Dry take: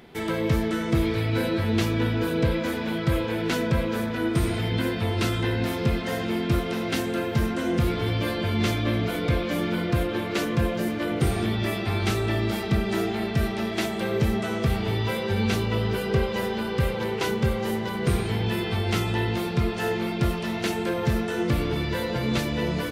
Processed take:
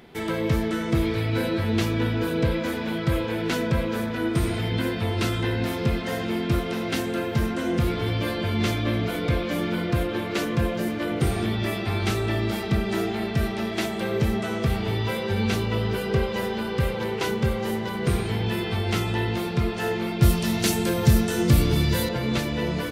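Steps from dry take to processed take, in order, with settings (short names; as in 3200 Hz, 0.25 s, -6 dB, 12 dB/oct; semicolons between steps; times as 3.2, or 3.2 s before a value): 20.22–22.09 tone controls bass +8 dB, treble +13 dB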